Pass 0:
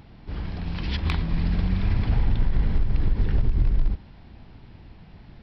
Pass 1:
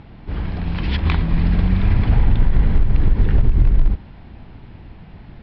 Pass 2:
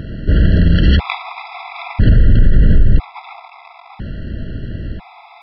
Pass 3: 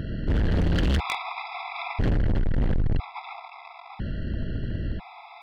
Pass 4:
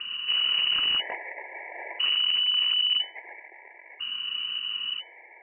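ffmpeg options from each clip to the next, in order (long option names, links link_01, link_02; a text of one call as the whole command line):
ffmpeg -i in.wav -af "lowpass=3300,volume=7dB" out.wav
ffmpeg -i in.wav -af "alimiter=level_in=15.5dB:limit=-1dB:release=50:level=0:latency=1,afftfilt=real='re*gt(sin(2*PI*0.5*pts/sr)*(1-2*mod(floor(b*sr/1024/670),2)),0)':imag='im*gt(sin(2*PI*0.5*pts/sr)*(1-2*mod(floor(b*sr/1024/670),2)),0)':win_size=1024:overlap=0.75,volume=-1dB" out.wav
ffmpeg -i in.wav -af "volume=15.5dB,asoftclip=hard,volume=-15.5dB,volume=-4.5dB" out.wav
ffmpeg -i in.wav -filter_complex "[0:a]acrossover=split=260|560[link_01][link_02][link_03];[link_02]acrusher=samples=30:mix=1:aa=0.000001[link_04];[link_01][link_04][link_03]amix=inputs=3:normalize=0,lowpass=frequency=2600:width_type=q:width=0.5098,lowpass=frequency=2600:width_type=q:width=0.6013,lowpass=frequency=2600:width_type=q:width=0.9,lowpass=frequency=2600:width_type=q:width=2.563,afreqshift=-3000,volume=-3.5dB" out.wav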